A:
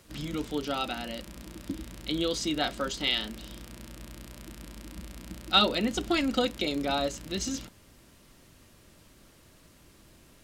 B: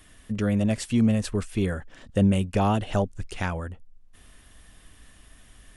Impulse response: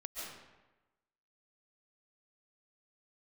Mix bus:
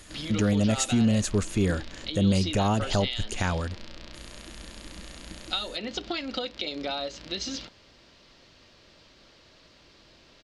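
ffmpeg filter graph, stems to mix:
-filter_complex "[0:a]firequalizer=gain_entry='entry(180,0);entry(520,8);entry(1100,6);entry(4500,13);entry(10000,-19)':delay=0.05:min_phase=1,acompressor=threshold=-24dB:ratio=10,volume=-4dB[a];[1:a]equalizer=f=6.7k:t=o:w=0.23:g=13.5,volume=2.5dB[b];[a][b]amix=inputs=2:normalize=0,alimiter=limit=-14.5dB:level=0:latency=1:release=72"

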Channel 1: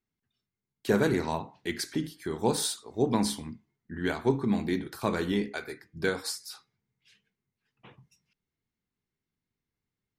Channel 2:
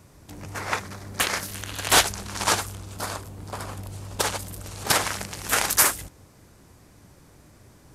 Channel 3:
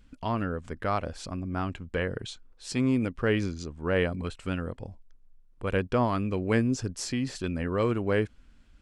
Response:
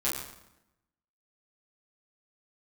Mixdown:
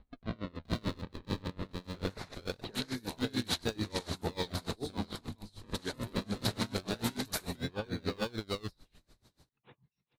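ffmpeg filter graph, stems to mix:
-filter_complex "[0:a]adelay=1800,volume=-1dB,asplit=2[a][b];[b]volume=-19.5dB[c];[1:a]alimiter=limit=-15dB:level=0:latency=1:release=181,adelay=1550,volume=-10dB[d];[2:a]acrusher=samples=42:mix=1:aa=0.000001:lfo=1:lforange=42:lforate=0.23,highshelf=f=6.3k:g=-10.5,alimiter=limit=-20.5dB:level=0:latency=1:release=21,volume=0.5dB,asplit=3[e][f][g];[f]volume=-4dB[h];[g]apad=whole_len=528515[i];[a][i]sidechaincompress=threshold=-30dB:ratio=8:attack=16:release=188[j];[j][e]amix=inputs=2:normalize=0,lowpass=2.5k,acompressor=threshold=-35dB:ratio=2,volume=0dB[k];[c][h]amix=inputs=2:normalize=0,aecho=0:1:425:1[l];[d][k][l]amix=inputs=3:normalize=0,equalizer=f=4k:t=o:w=0.44:g=15,aeval=exprs='val(0)*pow(10,-26*(0.5-0.5*cos(2*PI*6.8*n/s))/20)':c=same"

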